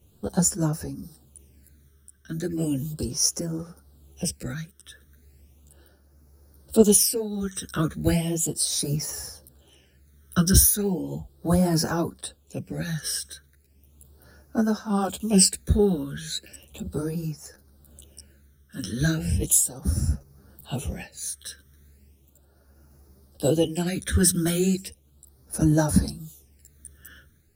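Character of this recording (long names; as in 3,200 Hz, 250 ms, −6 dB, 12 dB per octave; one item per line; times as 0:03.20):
a quantiser's noise floor 12 bits, dither none
phaser sweep stages 12, 0.36 Hz, lowest notch 790–3,100 Hz
tremolo triangle 0.79 Hz, depth 60%
a shimmering, thickened sound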